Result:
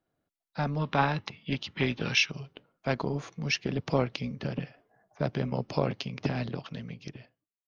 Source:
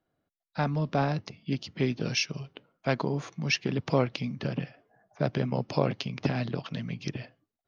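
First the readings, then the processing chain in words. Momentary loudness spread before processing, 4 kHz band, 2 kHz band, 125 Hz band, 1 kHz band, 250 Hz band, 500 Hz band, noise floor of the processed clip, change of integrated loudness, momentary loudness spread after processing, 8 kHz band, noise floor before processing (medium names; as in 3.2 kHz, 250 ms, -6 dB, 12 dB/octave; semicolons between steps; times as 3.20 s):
9 LU, +1.5 dB, +2.5 dB, -2.0 dB, +1.0 dB, -2.0 dB, -2.0 dB, under -85 dBFS, -0.5 dB, 15 LU, no reading, under -85 dBFS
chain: fade out at the end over 1.20 s; AM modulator 300 Hz, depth 25%; time-frequency box 0.80–2.31 s, 780–4100 Hz +8 dB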